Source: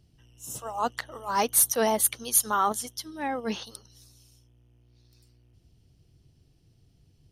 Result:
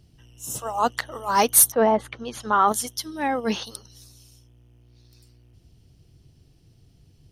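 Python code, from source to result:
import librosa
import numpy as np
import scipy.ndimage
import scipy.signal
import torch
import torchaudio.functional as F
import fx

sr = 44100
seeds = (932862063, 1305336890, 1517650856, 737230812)

y = fx.lowpass(x, sr, hz=fx.line((1.7, 1300.0), (2.67, 3100.0)), slope=12, at=(1.7, 2.67), fade=0.02)
y = F.gain(torch.from_numpy(y), 6.0).numpy()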